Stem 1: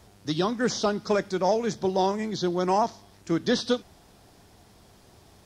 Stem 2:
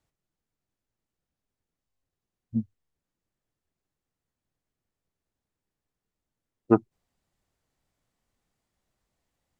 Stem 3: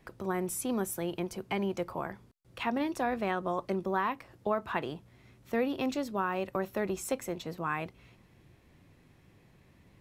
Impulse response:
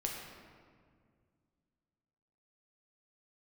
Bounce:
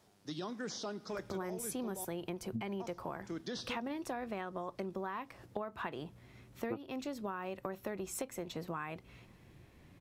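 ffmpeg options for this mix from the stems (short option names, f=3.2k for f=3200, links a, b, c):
-filter_complex "[0:a]highpass=140,alimiter=limit=-18.5dB:level=0:latency=1:release=14,volume=-12dB,asplit=3[a][b][c];[a]atrim=end=2.05,asetpts=PTS-STARTPTS,afade=t=out:st=2.046:d=0.004:c=hsin[d];[b]atrim=start=2.05:end=2.8,asetpts=PTS-STARTPTS,volume=0[e];[c]atrim=start=2.8,asetpts=PTS-STARTPTS,afade=t=in:d=0.004:c=hsin[f];[d][e][f]concat=n=3:v=0:a=1,asplit=2[g][h];[h]volume=-21.5dB[i];[1:a]volume=-3dB[j];[2:a]adelay=1100,volume=1dB[k];[3:a]atrim=start_sample=2205[l];[i][l]afir=irnorm=-1:irlink=0[m];[g][j][k][m]amix=inputs=4:normalize=0,acompressor=threshold=-36dB:ratio=10"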